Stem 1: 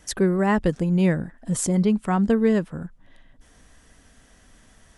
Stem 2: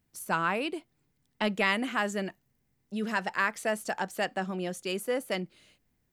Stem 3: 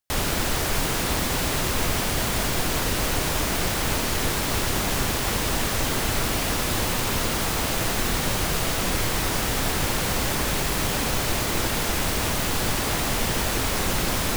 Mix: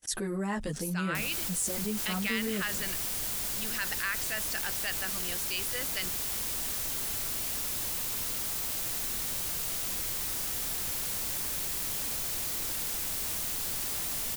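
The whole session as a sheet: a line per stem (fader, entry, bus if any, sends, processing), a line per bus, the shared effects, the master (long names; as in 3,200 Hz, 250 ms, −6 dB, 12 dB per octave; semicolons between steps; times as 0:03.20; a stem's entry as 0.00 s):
−2.5 dB, 0.00 s, no send, noise gate −51 dBFS, range −51 dB; string-ensemble chorus
−8.0 dB, 0.65 s, no send, flat-topped bell 2,600 Hz +11 dB 2.4 octaves
−15.0 dB, 1.05 s, no send, no processing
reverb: not used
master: first-order pre-emphasis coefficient 0.8; envelope flattener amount 70%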